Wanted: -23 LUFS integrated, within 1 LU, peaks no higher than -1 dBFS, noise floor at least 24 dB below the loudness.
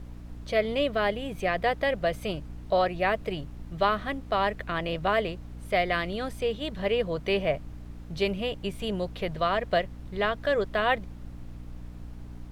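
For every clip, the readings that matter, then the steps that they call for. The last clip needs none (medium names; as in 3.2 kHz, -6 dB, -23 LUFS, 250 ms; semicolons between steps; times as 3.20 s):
hum 60 Hz; highest harmonic 300 Hz; hum level -40 dBFS; noise floor -43 dBFS; noise floor target -53 dBFS; loudness -28.5 LUFS; peak level -11.0 dBFS; loudness target -23.0 LUFS
-> de-hum 60 Hz, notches 5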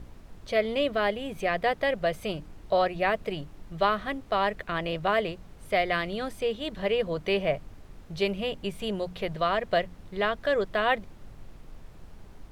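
hum not found; noise floor -49 dBFS; noise floor target -53 dBFS
-> noise print and reduce 6 dB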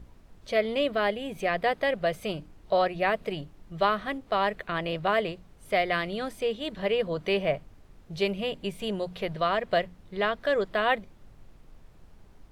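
noise floor -54 dBFS; loudness -28.5 LUFS; peak level -11.5 dBFS; loudness target -23.0 LUFS
-> trim +5.5 dB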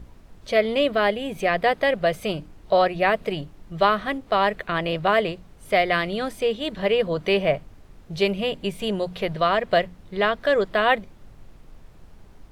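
loudness -23.0 LUFS; peak level -6.0 dBFS; noise floor -49 dBFS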